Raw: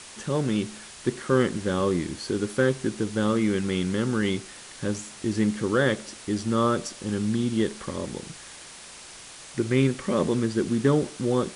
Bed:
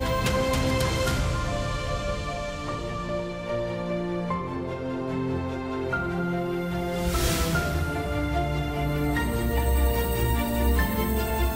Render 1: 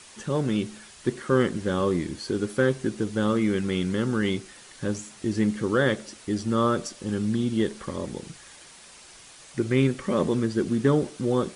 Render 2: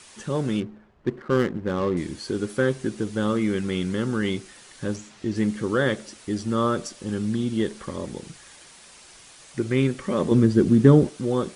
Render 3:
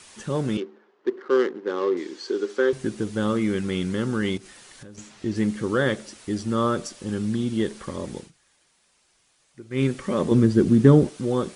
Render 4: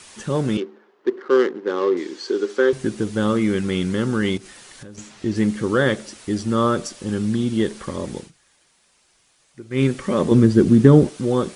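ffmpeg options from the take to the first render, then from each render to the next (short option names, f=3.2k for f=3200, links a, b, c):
-af "afftdn=nr=6:nf=-44"
-filter_complex "[0:a]asettb=1/sr,asplit=3[a][b][c];[a]atrim=end=0.604[d];[b]atrim=start=0.6:end=1.97,asetpts=PTS-STARTPTS,afade=t=in:d=0.004:c=qsin,afade=t=out:st=1.366:d=0.004:c=qsin,adynamicsmooth=sensitivity=3.5:basefreq=680[e];[c]atrim=start=1.966[f];[d][e]acrossfade=d=0.004:c1=hsin:c2=qsin[g];[g][f]acrossfade=d=0.004:c1=qsin:c2=hsin,asettb=1/sr,asplit=3[h][i][j];[h]atrim=end=4.964[k];[i]atrim=start=4.96:end=5.36,asetpts=PTS-STARTPTS,afade=t=in:d=0.004:c=qsin,afade=t=out:st=0.396:d=0.004:c=qsin,lowpass=5.6k[l];[j]atrim=start=5.356[m];[k][l]acrossfade=d=0.004:c1=hsin:c2=qsin[n];[n][m]acrossfade=d=0.004:c1=qsin:c2=hsin,asettb=1/sr,asplit=3[o][p][q];[o]atrim=end=10.314[r];[p]atrim=start=10.31:end=11.09,asetpts=PTS-STARTPTS,afade=t=in:d=0.004:c=qsin,afade=t=out:st=0.776:d=0.004:c=qsin,lowshelf=f=430:g=10.5[s];[q]atrim=start=11.086[t];[r][s]acrossfade=d=0.004:c1=hsin:c2=qsin[u];[u][t]acrossfade=d=0.004:c1=qsin:c2=hsin"
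-filter_complex "[0:a]asettb=1/sr,asplit=3[a][b][c];[a]atrim=end=0.574[d];[b]atrim=start=0.57:end=2.73,asetpts=PTS-STARTPTS,afade=t=in:d=0.004:c=qsin,afade=t=out:st=2.156:d=0.004:c=qsin,highpass=f=310:w=0.5412,highpass=f=310:w=1.3066,equalizer=f=400:t=q:w=4:g=6,equalizer=f=640:t=q:w=4:g=-7,equalizer=f=2.4k:t=q:w=4:g=-3,lowpass=f=6.6k:w=0.5412,lowpass=f=6.6k:w=1.3066[e];[c]atrim=start=2.726[f];[d][e]acrossfade=d=0.004:c1=hsin:c2=qsin[g];[g][f]acrossfade=d=0.004:c1=qsin:c2=hsin,asettb=1/sr,asplit=3[h][i][j];[h]atrim=end=4.374[k];[i]atrim=start=4.37:end=4.98,asetpts=PTS-STARTPTS,afade=t=in:d=0.004:c=qsin,afade=t=out:st=0.606:d=0.004:c=qsin,acompressor=threshold=-40dB:ratio=8:attack=3.2:release=140:knee=1:detection=peak[l];[j]atrim=start=4.976[m];[k][l]acrossfade=d=0.004:c1=hsin:c2=qsin[n];[n][m]acrossfade=d=0.004:c1=qsin:c2=hsin,asplit=3[o][p][q];[o]atrim=end=8.31,asetpts=PTS-STARTPTS,afade=t=out:st=8.18:d=0.13:silence=0.149624[r];[p]atrim=start=8.31:end=9.7,asetpts=PTS-STARTPTS,volume=-16.5dB[s];[q]atrim=start=9.7,asetpts=PTS-STARTPTS,afade=t=in:d=0.13:silence=0.149624[t];[r][s][t]concat=n=3:v=0:a=1"
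-af "volume=4dB,alimiter=limit=-1dB:level=0:latency=1"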